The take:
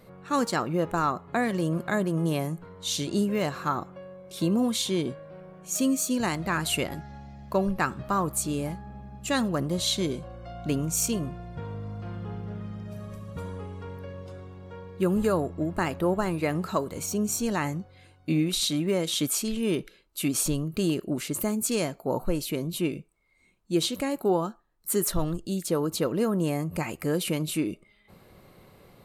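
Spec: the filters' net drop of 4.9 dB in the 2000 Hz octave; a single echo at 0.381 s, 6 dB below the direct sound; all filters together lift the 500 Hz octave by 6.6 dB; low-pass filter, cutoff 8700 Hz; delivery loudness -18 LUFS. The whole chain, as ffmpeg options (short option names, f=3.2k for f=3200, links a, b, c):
-af "lowpass=8.7k,equalizer=f=500:t=o:g=8.5,equalizer=f=2k:t=o:g=-7,aecho=1:1:381:0.501,volume=7dB"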